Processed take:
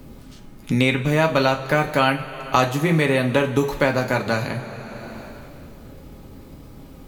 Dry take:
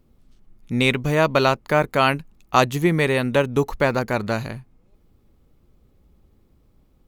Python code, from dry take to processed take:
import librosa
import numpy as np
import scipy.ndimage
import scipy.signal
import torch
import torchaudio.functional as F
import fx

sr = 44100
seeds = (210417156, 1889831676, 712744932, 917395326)

y = fx.rev_double_slope(x, sr, seeds[0], early_s=0.25, late_s=2.2, knee_db=-18, drr_db=2.0)
y = fx.band_squash(y, sr, depth_pct=70)
y = y * librosa.db_to_amplitude(-2.0)